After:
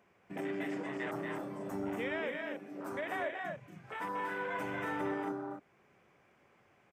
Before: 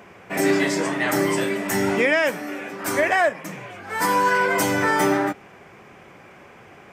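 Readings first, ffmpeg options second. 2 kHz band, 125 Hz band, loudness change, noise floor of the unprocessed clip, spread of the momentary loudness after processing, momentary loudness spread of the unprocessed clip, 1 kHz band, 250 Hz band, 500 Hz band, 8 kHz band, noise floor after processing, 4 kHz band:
-18.0 dB, -16.0 dB, -17.5 dB, -47 dBFS, 7 LU, 12 LU, -17.0 dB, -15.0 dB, -16.5 dB, -30.5 dB, -68 dBFS, -20.0 dB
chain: -filter_complex "[0:a]afwtdn=0.0708,acompressor=threshold=-40dB:ratio=2,asplit=2[a][b];[b]aecho=0:1:233.2|271.1:0.562|0.501[c];[a][c]amix=inputs=2:normalize=0,volume=-6dB"

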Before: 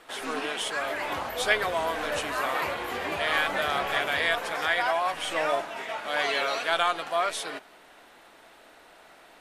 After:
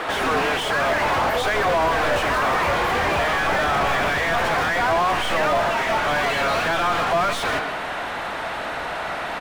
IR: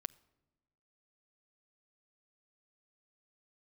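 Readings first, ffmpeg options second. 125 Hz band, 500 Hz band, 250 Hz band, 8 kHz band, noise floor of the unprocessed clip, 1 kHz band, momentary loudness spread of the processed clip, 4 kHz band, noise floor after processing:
+16.5 dB, +8.0 dB, +10.5 dB, +4.0 dB, -54 dBFS, +9.0 dB, 8 LU, +4.0 dB, -29 dBFS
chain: -filter_complex "[0:a]aecho=1:1:129:0.133,alimiter=limit=-19.5dB:level=0:latency=1:release=39,asplit=2[a][b];[b]acrusher=bits=5:mix=0:aa=0.000001,volume=-8dB[c];[a][c]amix=inputs=2:normalize=0,asubboost=boost=10:cutoff=110,asplit=2[d][e];[e]highpass=f=720:p=1,volume=36dB,asoftclip=type=tanh:threshold=-15.5dB[f];[d][f]amix=inputs=2:normalize=0,lowpass=f=1k:p=1,volume=-6dB,volume=4.5dB"

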